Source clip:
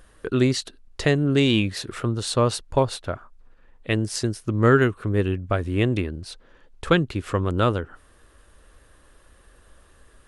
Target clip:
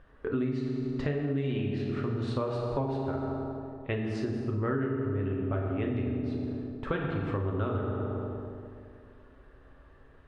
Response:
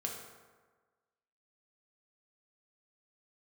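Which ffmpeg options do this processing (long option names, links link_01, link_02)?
-filter_complex "[0:a]lowpass=2100[link_01];[1:a]atrim=start_sample=2205,asetrate=25578,aresample=44100[link_02];[link_01][link_02]afir=irnorm=-1:irlink=0,acompressor=threshold=-22dB:ratio=6,volume=-5.5dB"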